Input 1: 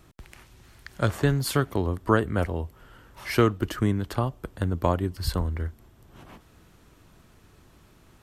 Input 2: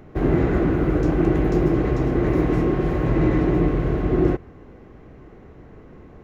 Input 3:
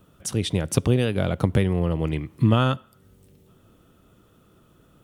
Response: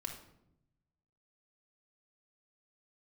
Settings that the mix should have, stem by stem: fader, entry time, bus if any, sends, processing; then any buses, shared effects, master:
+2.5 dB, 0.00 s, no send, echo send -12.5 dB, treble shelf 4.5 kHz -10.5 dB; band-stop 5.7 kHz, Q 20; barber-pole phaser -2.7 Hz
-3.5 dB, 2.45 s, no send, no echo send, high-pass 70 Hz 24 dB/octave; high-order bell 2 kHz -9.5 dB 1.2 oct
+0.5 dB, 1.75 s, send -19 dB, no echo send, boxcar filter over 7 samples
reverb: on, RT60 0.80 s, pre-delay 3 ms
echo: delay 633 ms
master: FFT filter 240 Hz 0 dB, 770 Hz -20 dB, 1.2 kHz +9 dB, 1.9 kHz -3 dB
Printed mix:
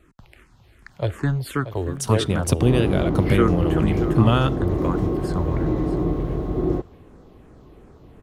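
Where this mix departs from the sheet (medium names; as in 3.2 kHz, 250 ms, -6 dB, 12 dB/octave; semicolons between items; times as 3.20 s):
stem 2: missing high-pass 70 Hz 24 dB/octave; stem 3: missing boxcar filter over 7 samples; master: missing FFT filter 240 Hz 0 dB, 770 Hz -20 dB, 1.2 kHz +9 dB, 1.9 kHz -3 dB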